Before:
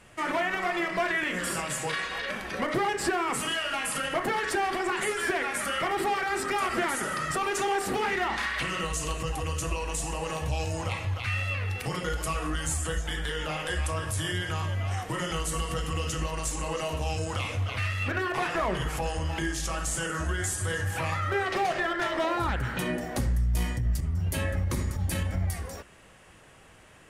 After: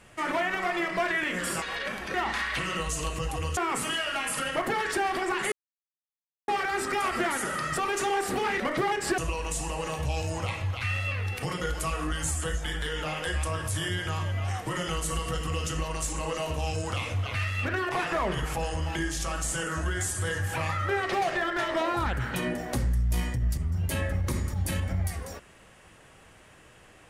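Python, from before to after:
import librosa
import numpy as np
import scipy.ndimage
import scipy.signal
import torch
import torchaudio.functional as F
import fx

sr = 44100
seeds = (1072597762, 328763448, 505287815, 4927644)

y = fx.edit(x, sr, fx.cut(start_s=1.62, length_s=0.43),
    fx.swap(start_s=2.57, length_s=0.58, other_s=8.18, other_length_s=1.43),
    fx.silence(start_s=5.1, length_s=0.96), tone=tone)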